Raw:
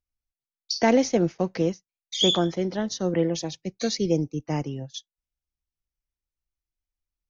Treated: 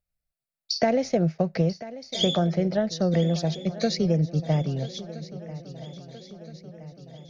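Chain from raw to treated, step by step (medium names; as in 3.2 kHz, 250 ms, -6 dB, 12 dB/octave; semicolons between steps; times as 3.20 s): graphic EQ with 31 bands 160 Hz +10 dB, 315 Hz -8 dB, 630 Hz +9 dB, 1 kHz -9 dB, 3.15 kHz -6 dB, 6.3 kHz -9 dB; compression, threshold -22 dBFS, peak gain reduction 9 dB; on a send: shuffle delay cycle 1320 ms, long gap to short 3:1, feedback 54%, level -16 dB; on the sum: trim +3 dB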